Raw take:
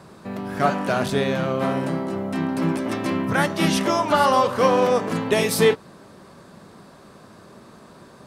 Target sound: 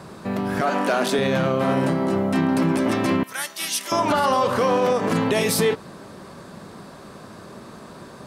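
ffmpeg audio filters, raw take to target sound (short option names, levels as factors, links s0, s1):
-filter_complex "[0:a]asettb=1/sr,asplit=3[s0][s1][s2];[s0]atrim=end=0.614[s3];[s1]atrim=start=0.61:end=1.19,asetpts=PTS-STARTPTS,afade=t=in:d=0.004:c=qsin,afade=t=out:st=0.576:d=0.004:c=qsin,highpass=f=230:w=0.5412,highpass=f=230:w=1.3066[s4];[s2]atrim=start=1.186[s5];[s3][s4]acrossfade=d=0.004:c1=hsin:c2=qsin[s6];[s6][s5]acrossfade=d=0.004:c1=qsin:c2=hsin,asettb=1/sr,asplit=3[s7][s8][s9];[s7]atrim=end=3.234[s10];[s8]atrim=start=3.23:end=3.92,asetpts=PTS-STARTPTS,afade=t=in:d=0.004:c=qsin,afade=t=out:st=0.686:d=0.004:c=qsin,aderivative[s11];[s9]atrim=start=3.916[s12];[s10][s11]acrossfade=d=0.004:c1=hsin:c2=qsin[s13];[s13][s12]acrossfade=d=0.004:c1=qsin:c2=hsin,alimiter=limit=0.141:level=0:latency=1:release=72,volume=1.88"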